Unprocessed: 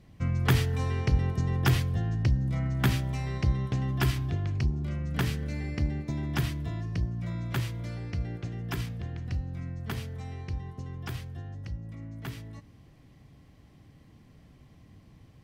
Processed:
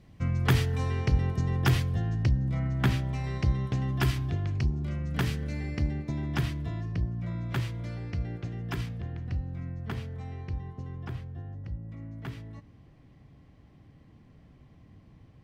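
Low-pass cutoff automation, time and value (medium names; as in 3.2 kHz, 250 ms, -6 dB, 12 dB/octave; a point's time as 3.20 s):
low-pass 6 dB/octave
9.9 kHz
from 2.29 s 3.8 kHz
from 3.24 s 10 kHz
from 5.93 s 5 kHz
from 6.92 s 2.5 kHz
from 7.49 s 4.7 kHz
from 9.01 s 2.3 kHz
from 11.05 s 1.1 kHz
from 11.91 s 2.5 kHz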